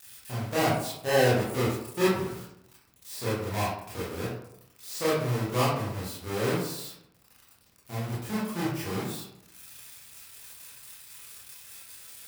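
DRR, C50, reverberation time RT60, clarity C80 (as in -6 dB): -9.5 dB, 0.5 dB, 0.80 s, 5.0 dB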